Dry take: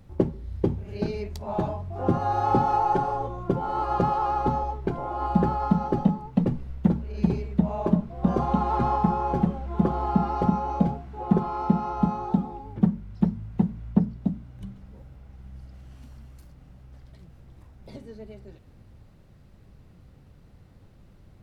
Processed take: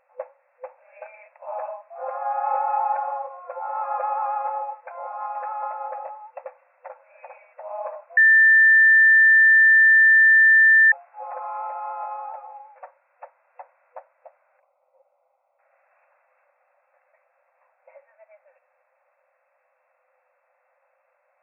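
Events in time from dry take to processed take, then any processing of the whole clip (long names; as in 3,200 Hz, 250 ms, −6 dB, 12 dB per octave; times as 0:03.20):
0:05.07–0:05.63: high-pass filter 680 Hz
0:08.17–0:10.92: beep over 1,780 Hz −10.5 dBFS
0:14.60–0:15.59: moving average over 26 samples
whole clip: brick-wall band-pass 500–2,700 Hz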